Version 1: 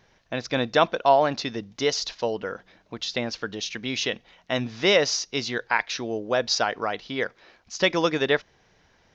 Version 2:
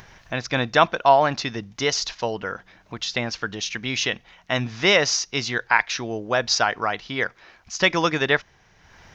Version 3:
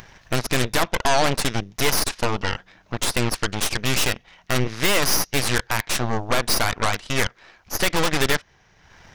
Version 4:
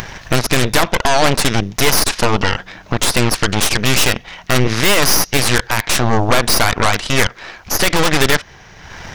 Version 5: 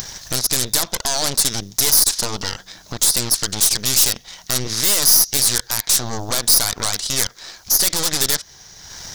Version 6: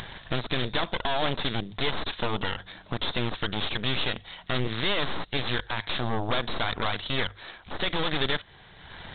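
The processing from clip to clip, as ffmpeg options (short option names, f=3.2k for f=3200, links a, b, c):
-af "acompressor=mode=upward:threshold=-43dB:ratio=2.5,equalizer=f=250:t=o:w=1:g=-5,equalizer=f=500:t=o:w=1:g=-7,equalizer=f=4k:t=o:w=1:g=-5,volume=6.5dB"
-af "alimiter=limit=-12dB:level=0:latency=1:release=170,aeval=exprs='0.251*(cos(1*acos(clip(val(0)/0.251,-1,1)))-cos(1*PI/2))+0.1*(cos(8*acos(clip(val(0)/0.251,-1,1)))-cos(8*PI/2))':c=same"
-af "alimiter=level_in=18.5dB:limit=-1dB:release=50:level=0:latency=1,volume=-2dB"
-filter_complex "[0:a]asplit=2[a][b];[b]acompressor=threshold=-21dB:ratio=6,volume=-2.5dB[c];[a][c]amix=inputs=2:normalize=0,aexciter=amount=5.4:drive=8.2:freq=3.8k,volume=-14dB"
-af "bandreject=f=50:t=h:w=6,bandreject=f=100:t=h:w=6,volume=-1.5dB" -ar 8000 -c:a pcm_mulaw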